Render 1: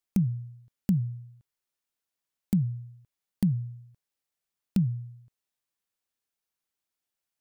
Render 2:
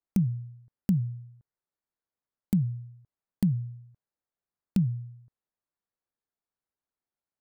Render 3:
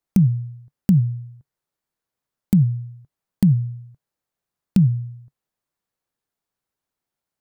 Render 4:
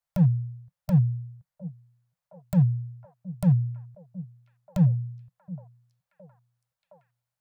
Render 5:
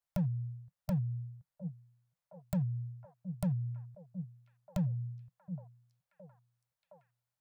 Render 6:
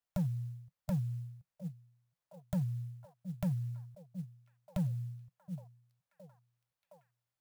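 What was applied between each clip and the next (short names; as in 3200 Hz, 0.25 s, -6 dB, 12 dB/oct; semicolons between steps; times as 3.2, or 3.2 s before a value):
Wiener smoothing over 15 samples
bell 140 Hz +4.5 dB 0.5 oct; gain +7.5 dB
overloaded stage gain 11.5 dB; Chebyshev band-stop 180–500 Hz, order 4; delay with a stepping band-pass 0.717 s, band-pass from 270 Hz, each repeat 0.7 oct, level -9.5 dB; gain -2.5 dB
compressor 12:1, threshold -25 dBFS, peak gain reduction 10.5 dB; gain -4 dB
clock jitter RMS 0.031 ms; gain -1 dB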